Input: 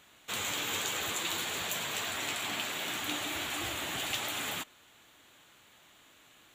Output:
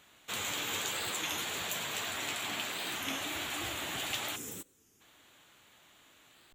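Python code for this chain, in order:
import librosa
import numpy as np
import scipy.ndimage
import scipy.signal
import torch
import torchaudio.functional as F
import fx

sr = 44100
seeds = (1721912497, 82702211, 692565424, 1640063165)

y = fx.spec_box(x, sr, start_s=4.36, length_s=0.65, low_hz=520.0, high_hz=4900.0, gain_db=-15)
y = fx.record_warp(y, sr, rpm=33.33, depth_cents=160.0)
y = y * librosa.db_to_amplitude(-1.5)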